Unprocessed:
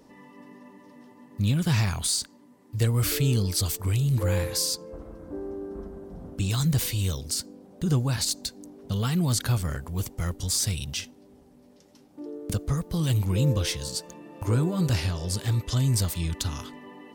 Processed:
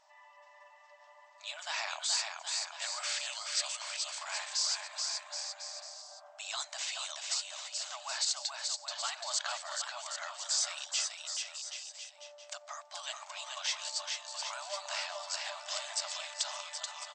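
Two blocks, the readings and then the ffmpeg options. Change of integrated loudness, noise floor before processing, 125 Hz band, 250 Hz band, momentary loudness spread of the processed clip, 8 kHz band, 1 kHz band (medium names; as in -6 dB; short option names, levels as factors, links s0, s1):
-9.0 dB, -55 dBFS, under -40 dB, under -40 dB, 11 LU, -3.5 dB, -1.5 dB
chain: -filter_complex "[0:a]afftfilt=real='re*between(b*sr/4096,580,8200)':imag='im*between(b*sr/4096,580,8200)':win_size=4096:overlap=0.75,asplit=2[s0][s1];[s1]aecho=0:1:430|774|1049|1269|1445:0.631|0.398|0.251|0.158|0.1[s2];[s0][s2]amix=inputs=2:normalize=0,volume=0.668"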